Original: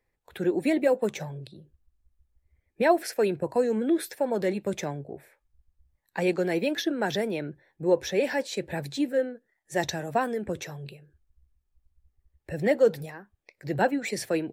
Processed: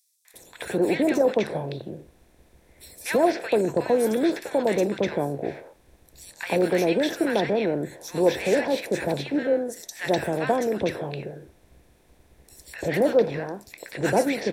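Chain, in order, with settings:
compressor on every frequency bin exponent 0.6
three-band delay without the direct sound highs, mids, lows 250/340 ms, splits 1,200/5,200 Hz

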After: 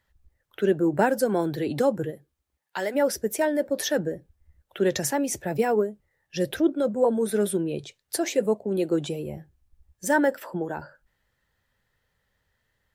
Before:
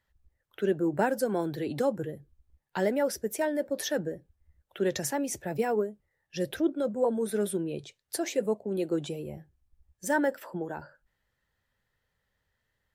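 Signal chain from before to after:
0:02.10–0:02.94: high-pass filter 410 Hz → 1,100 Hz 6 dB per octave
level +5 dB

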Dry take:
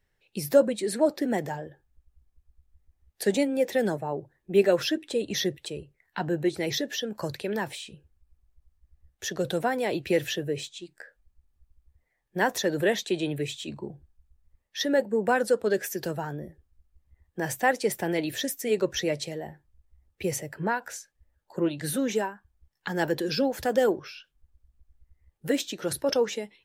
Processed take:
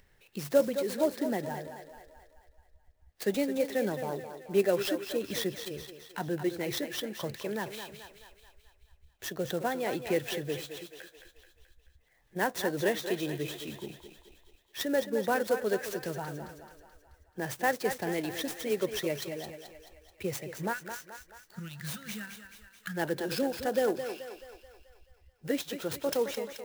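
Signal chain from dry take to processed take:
gain on a spectral selection 0:20.73–0:22.97, 220–1,200 Hz −23 dB
upward compression, threshold −45 dBFS
feedback echo with a high-pass in the loop 216 ms, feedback 55%, high-pass 320 Hz, level −8 dB
converter with an unsteady clock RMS 0.026 ms
level −5 dB

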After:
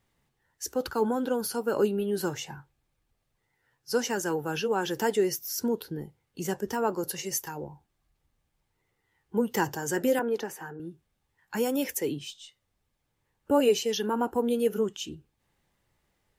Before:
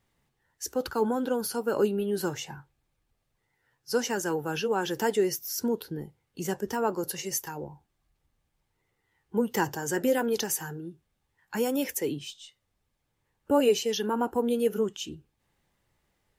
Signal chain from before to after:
0:10.19–0:10.80: three-way crossover with the lows and the highs turned down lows −12 dB, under 210 Hz, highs −15 dB, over 2,300 Hz

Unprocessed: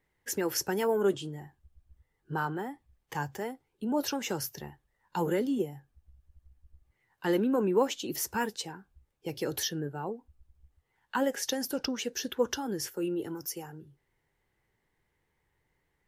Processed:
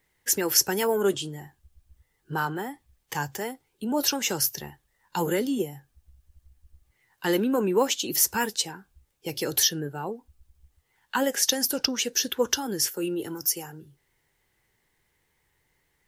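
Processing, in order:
high-shelf EQ 2,500 Hz +10.5 dB
level +2.5 dB

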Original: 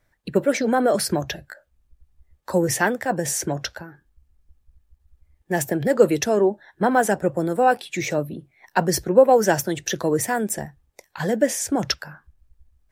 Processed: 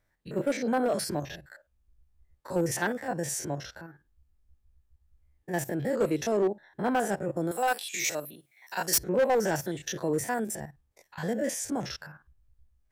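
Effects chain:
spectrum averaged block by block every 50 ms
0:07.51–0:08.98: spectral tilt +4.5 dB per octave
hard clipping −13.5 dBFS, distortion −14 dB
level −6 dB

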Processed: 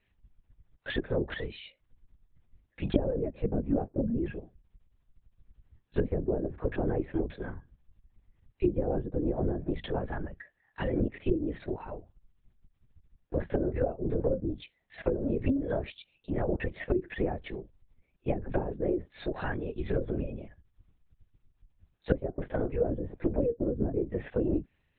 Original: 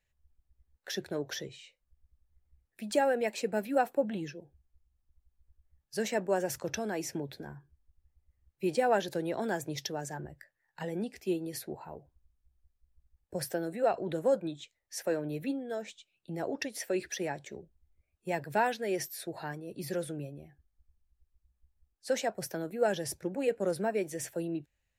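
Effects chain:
treble cut that deepens with the level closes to 320 Hz, closed at −28 dBFS
dynamic equaliser 800 Hz, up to −4 dB, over −52 dBFS, Q 2.1
linear-prediction vocoder at 8 kHz whisper
0:19.24–0:19.65: multiband upward and downward compressor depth 70%
level +7 dB

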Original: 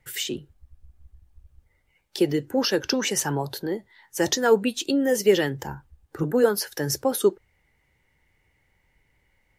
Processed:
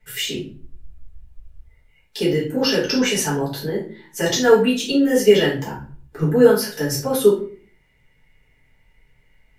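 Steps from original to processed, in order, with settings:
parametric band 2,800 Hz +3.5 dB 2.1 octaves
rectangular room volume 35 cubic metres, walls mixed, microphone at 1.5 metres
level −6 dB

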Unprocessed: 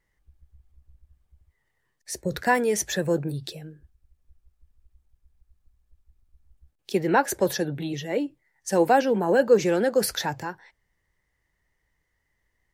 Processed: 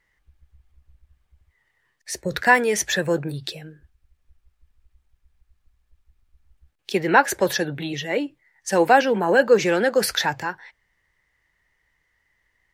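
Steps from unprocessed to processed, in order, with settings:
parametric band 2,100 Hz +9 dB 2.7 octaves

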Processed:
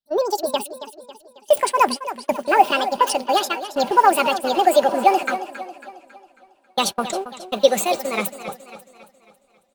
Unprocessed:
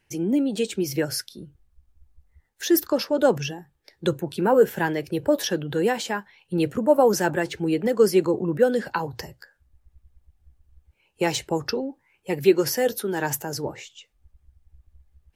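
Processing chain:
gliding playback speed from 184% → 131%
on a send: feedback delay with all-pass diffusion 1,033 ms, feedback 69%, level −16 dB
on the sum: noise gate −26 dBFS, range −33 dB
parametric band 3,800 Hz +7 dB 0.64 octaves
comb filter 5.1 ms, depth 39%
feedback echo with a swinging delay time 273 ms, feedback 48%, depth 77 cents, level −13 dB
level +2.5 dB

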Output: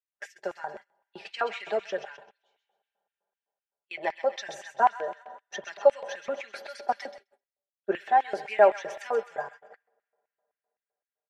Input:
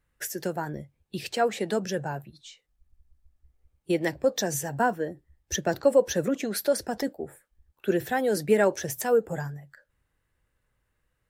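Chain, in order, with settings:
head-to-tape spacing loss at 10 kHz 30 dB
comb filter 5 ms, depth 77%
spring reverb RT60 3.6 s, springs 52/57 ms, chirp 70 ms, DRR 16 dB
auto-filter high-pass square 3.9 Hz 720–2,300 Hz
delay with a high-pass on its return 130 ms, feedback 50%, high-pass 2,100 Hz, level −7 dB
noise gate −45 dBFS, range −22 dB
0:06.81–0:08.04: multiband upward and downward expander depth 100%

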